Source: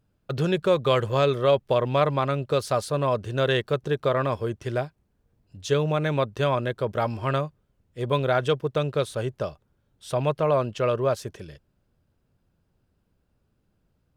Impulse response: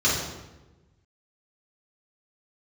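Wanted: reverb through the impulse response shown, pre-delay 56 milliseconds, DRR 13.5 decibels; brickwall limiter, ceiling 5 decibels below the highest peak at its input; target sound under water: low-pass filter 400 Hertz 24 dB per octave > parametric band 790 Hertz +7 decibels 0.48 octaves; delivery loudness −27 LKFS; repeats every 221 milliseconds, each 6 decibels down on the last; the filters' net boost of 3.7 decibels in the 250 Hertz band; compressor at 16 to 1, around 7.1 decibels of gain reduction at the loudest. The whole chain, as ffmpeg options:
-filter_complex "[0:a]equalizer=frequency=250:width_type=o:gain=6,acompressor=threshold=-22dB:ratio=16,alimiter=limit=-18dB:level=0:latency=1,aecho=1:1:221|442|663|884|1105|1326:0.501|0.251|0.125|0.0626|0.0313|0.0157,asplit=2[link_01][link_02];[1:a]atrim=start_sample=2205,adelay=56[link_03];[link_02][link_03]afir=irnorm=-1:irlink=0,volume=-29dB[link_04];[link_01][link_04]amix=inputs=2:normalize=0,lowpass=frequency=400:width=0.5412,lowpass=frequency=400:width=1.3066,equalizer=frequency=790:width_type=o:width=0.48:gain=7,volume=4dB"

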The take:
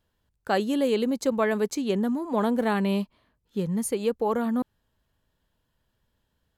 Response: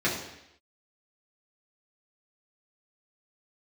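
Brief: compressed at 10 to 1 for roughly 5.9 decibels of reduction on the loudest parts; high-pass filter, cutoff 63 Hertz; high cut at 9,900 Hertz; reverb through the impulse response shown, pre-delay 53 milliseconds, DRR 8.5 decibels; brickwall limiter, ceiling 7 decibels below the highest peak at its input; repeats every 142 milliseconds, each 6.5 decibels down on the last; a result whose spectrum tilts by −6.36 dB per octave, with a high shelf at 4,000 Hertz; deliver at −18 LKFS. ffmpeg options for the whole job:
-filter_complex "[0:a]highpass=63,lowpass=9900,highshelf=frequency=4000:gain=-7.5,acompressor=threshold=-25dB:ratio=10,alimiter=level_in=0.5dB:limit=-24dB:level=0:latency=1,volume=-0.5dB,aecho=1:1:142|284|426|568|710|852:0.473|0.222|0.105|0.0491|0.0231|0.0109,asplit=2[link_01][link_02];[1:a]atrim=start_sample=2205,adelay=53[link_03];[link_02][link_03]afir=irnorm=-1:irlink=0,volume=-21dB[link_04];[link_01][link_04]amix=inputs=2:normalize=0,volume=13.5dB"

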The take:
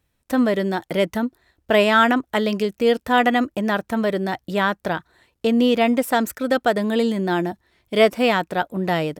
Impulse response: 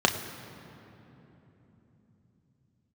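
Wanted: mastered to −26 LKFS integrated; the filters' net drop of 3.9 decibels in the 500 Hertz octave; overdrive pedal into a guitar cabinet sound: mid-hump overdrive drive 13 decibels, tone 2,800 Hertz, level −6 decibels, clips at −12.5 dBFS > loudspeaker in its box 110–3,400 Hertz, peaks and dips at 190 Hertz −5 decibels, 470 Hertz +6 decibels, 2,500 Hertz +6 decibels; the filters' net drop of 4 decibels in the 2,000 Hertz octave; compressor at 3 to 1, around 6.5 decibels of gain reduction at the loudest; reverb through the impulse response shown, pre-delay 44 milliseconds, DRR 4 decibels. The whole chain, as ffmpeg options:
-filter_complex "[0:a]equalizer=frequency=500:width_type=o:gain=-8.5,equalizer=frequency=2000:width_type=o:gain=-6.5,acompressor=threshold=-25dB:ratio=3,asplit=2[link_01][link_02];[1:a]atrim=start_sample=2205,adelay=44[link_03];[link_02][link_03]afir=irnorm=-1:irlink=0,volume=-19dB[link_04];[link_01][link_04]amix=inputs=2:normalize=0,asplit=2[link_05][link_06];[link_06]highpass=frequency=720:poles=1,volume=13dB,asoftclip=type=tanh:threshold=-12.5dB[link_07];[link_05][link_07]amix=inputs=2:normalize=0,lowpass=frequency=2800:poles=1,volume=-6dB,highpass=110,equalizer=frequency=190:width_type=q:width=4:gain=-5,equalizer=frequency=470:width_type=q:width=4:gain=6,equalizer=frequency=2500:width_type=q:width=4:gain=6,lowpass=frequency=3400:width=0.5412,lowpass=frequency=3400:width=1.3066,volume=-1dB"

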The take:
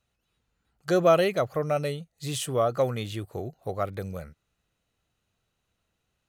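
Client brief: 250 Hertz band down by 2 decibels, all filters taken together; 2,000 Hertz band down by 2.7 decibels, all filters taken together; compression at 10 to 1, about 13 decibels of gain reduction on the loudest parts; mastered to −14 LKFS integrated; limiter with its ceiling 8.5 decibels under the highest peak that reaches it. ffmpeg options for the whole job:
ffmpeg -i in.wav -af "equalizer=frequency=250:width_type=o:gain=-3.5,equalizer=frequency=2000:width_type=o:gain=-3.5,acompressor=threshold=-28dB:ratio=10,volume=23dB,alimiter=limit=-3.5dB:level=0:latency=1" out.wav

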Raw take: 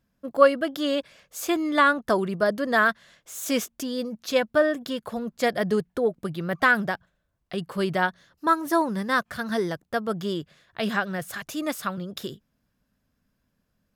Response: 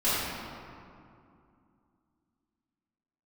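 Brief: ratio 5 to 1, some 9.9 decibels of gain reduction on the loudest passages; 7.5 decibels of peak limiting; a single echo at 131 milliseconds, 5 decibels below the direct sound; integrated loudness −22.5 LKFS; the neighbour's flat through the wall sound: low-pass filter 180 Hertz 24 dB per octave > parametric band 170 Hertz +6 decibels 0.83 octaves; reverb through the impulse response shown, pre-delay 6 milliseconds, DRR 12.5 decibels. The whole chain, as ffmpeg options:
-filter_complex "[0:a]acompressor=threshold=-21dB:ratio=5,alimiter=limit=-18.5dB:level=0:latency=1,aecho=1:1:131:0.562,asplit=2[link_01][link_02];[1:a]atrim=start_sample=2205,adelay=6[link_03];[link_02][link_03]afir=irnorm=-1:irlink=0,volume=-26dB[link_04];[link_01][link_04]amix=inputs=2:normalize=0,lowpass=frequency=180:width=0.5412,lowpass=frequency=180:width=1.3066,equalizer=frequency=170:width_type=o:width=0.83:gain=6,volume=13.5dB"

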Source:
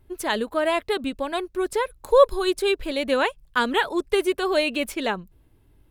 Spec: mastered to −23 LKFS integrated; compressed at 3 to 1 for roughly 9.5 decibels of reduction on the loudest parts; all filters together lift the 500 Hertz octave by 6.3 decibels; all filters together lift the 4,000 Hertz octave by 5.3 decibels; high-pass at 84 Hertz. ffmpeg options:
ffmpeg -i in.wav -af "highpass=84,equalizer=frequency=500:width_type=o:gain=7.5,equalizer=frequency=4000:width_type=o:gain=6.5,acompressor=threshold=-17dB:ratio=3,volume=-0.5dB" out.wav

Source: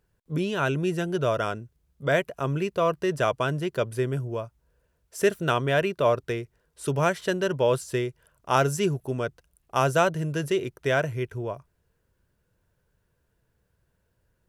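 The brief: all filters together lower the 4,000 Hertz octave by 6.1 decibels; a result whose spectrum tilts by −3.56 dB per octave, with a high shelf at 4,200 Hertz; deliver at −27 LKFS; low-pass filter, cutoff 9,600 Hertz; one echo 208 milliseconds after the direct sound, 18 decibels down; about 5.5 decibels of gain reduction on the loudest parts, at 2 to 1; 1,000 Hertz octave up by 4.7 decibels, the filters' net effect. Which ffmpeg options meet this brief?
ffmpeg -i in.wav -af "lowpass=9600,equalizer=frequency=1000:width_type=o:gain=7,equalizer=frequency=4000:width_type=o:gain=-7,highshelf=frequency=4200:gain=-5,acompressor=threshold=-23dB:ratio=2,aecho=1:1:208:0.126,volume=1dB" out.wav

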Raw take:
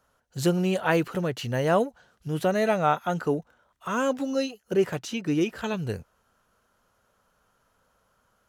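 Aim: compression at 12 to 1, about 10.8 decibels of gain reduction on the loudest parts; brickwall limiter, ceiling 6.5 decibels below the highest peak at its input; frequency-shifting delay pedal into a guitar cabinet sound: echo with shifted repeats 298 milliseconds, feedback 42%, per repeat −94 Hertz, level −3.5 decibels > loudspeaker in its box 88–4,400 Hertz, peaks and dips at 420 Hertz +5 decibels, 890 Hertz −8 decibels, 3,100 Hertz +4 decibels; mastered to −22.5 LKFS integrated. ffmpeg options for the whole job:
ffmpeg -i in.wav -filter_complex "[0:a]acompressor=threshold=-28dB:ratio=12,alimiter=level_in=0.5dB:limit=-24dB:level=0:latency=1,volume=-0.5dB,asplit=6[link_01][link_02][link_03][link_04][link_05][link_06];[link_02]adelay=298,afreqshift=-94,volume=-3.5dB[link_07];[link_03]adelay=596,afreqshift=-188,volume=-11dB[link_08];[link_04]adelay=894,afreqshift=-282,volume=-18.6dB[link_09];[link_05]adelay=1192,afreqshift=-376,volume=-26.1dB[link_10];[link_06]adelay=1490,afreqshift=-470,volume=-33.6dB[link_11];[link_01][link_07][link_08][link_09][link_10][link_11]amix=inputs=6:normalize=0,highpass=88,equalizer=frequency=420:width_type=q:width=4:gain=5,equalizer=frequency=890:width_type=q:width=4:gain=-8,equalizer=frequency=3100:width_type=q:width=4:gain=4,lowpass=frequency=4400:width=0.5412,lowpass=frequency=4400:width=1.3066,volume=10.5dB" out.wav

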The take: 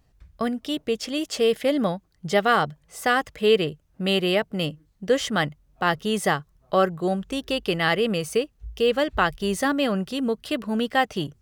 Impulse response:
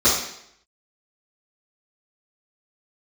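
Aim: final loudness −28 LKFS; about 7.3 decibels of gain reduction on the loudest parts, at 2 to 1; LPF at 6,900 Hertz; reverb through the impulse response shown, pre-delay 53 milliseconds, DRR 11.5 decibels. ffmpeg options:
-filter_complex "[0:a]lowpass=6900,acompressor=threshold=-28dB:ratio=2,asplit=2[link_01][link_02];[1:a]atrim=start_sample=2205,adelay=53[link_03];[link_02][link_03]afir=irnorm=-1:irlink=0,volume=-31dB[link_04];[link_01][link_04]amix=inputs=2:normalize=0,volume=1.5dB"

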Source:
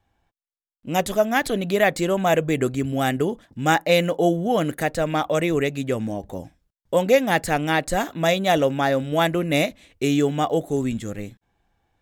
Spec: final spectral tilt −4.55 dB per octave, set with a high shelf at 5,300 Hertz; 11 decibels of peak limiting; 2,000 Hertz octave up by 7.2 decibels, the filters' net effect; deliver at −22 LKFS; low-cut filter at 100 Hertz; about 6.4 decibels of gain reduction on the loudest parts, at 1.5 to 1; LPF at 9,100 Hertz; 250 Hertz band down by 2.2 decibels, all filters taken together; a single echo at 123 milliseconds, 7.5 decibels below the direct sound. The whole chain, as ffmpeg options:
ffmpeg -i in.wav -af "highpass=100,lowpass=9100,equalizer=frequency=250:width_type=o:gain=-3,equalizer=frequency=2000:width_type=o:gain=8,highshelf=frequency=5300:gain=6,acompressor=threshold=-28dB:ratio=1.5,alimiter=limit=-17dB:level=0:latency=1,aecho=1:1:123:0.422,volume=6dB" out.wav

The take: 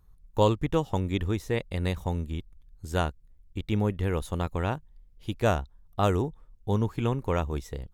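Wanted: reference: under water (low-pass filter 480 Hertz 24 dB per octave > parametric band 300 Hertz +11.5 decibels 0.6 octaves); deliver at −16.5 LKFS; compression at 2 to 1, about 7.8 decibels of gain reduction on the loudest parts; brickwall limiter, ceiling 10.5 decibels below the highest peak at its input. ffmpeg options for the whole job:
ffmpeg -i in.wav -af "acompressor=threshold=-32dB:ratio=2,alimiter=level_in=4.5dB:limit=-24dB:level=0:latency=1,volume=-4.5dB,lowpass=frequency=480:width=0.5412,lowpass=frequency=480:width=1.3066,equalizer=frequency=300:width_type=o:width=0.6:gain=11.5,volume=22.5dB" out.wav

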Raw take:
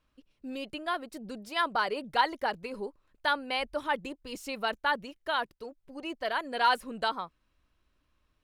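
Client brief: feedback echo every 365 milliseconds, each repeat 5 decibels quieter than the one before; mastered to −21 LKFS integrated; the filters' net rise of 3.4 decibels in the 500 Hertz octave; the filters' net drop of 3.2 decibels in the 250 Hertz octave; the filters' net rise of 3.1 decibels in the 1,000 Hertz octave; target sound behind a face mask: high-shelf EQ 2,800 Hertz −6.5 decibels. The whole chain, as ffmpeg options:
ffmpeg -i in.wav -af "equalizer=frequency=250:width_type=o:gain=-5.5,equalizer=frequency=500:width_type=o:gain=4.5,equalizer=frequency=1000:width_type=o:gain=3.5,highshelf=frequency=2800:gain=-6.5,aecho=1:1:365|730|1095|1460|1825|2190|2555:0.562|0.315|0.176|0.0988|0.0553|0.031|0.0173,volume=8dB" out.wav

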